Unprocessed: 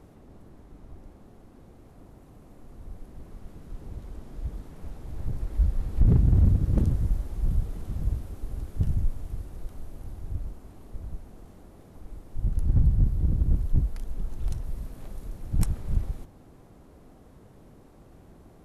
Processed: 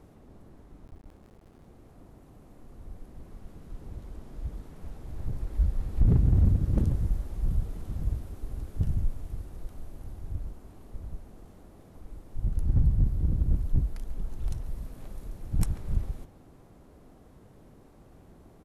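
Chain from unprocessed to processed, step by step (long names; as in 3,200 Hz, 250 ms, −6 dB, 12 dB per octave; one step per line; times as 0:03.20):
0:00.86–0:01.66: sub-harmonics by changed cycles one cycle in 3, muted
far-end echo of a speakerphone 140 ms, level −12 dB
level −2 dB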